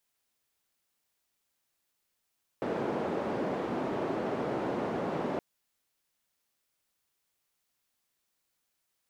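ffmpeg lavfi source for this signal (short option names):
-f lavfi -i "anoisesrc=c=white:d=2.77:r=44100:seed=1,highpass=f=210,lowpass=f=520,volume=-9.8dB"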